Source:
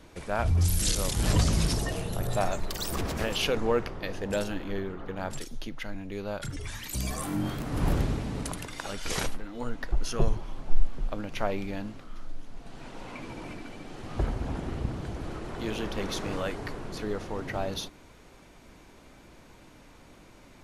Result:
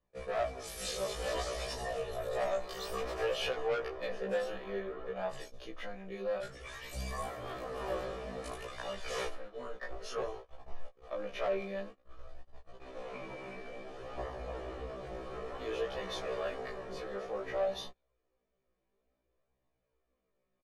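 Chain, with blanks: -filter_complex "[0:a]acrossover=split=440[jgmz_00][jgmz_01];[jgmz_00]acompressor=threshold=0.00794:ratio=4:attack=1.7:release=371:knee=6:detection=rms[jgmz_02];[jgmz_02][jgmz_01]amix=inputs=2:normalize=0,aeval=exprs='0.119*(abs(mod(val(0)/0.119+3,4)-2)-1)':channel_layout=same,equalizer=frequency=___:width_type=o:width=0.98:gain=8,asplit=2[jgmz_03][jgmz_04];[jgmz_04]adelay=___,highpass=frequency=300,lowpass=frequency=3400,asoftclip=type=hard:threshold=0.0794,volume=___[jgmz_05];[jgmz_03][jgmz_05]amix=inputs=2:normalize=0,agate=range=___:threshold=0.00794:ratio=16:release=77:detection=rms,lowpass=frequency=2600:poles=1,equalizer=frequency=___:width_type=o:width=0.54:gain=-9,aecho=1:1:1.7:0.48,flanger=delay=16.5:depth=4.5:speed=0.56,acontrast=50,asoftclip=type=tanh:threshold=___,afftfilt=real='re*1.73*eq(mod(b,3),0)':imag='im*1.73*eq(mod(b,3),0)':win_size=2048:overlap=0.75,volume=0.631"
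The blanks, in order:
420, 190, 0.0708, 0.0398, 100, 0.0944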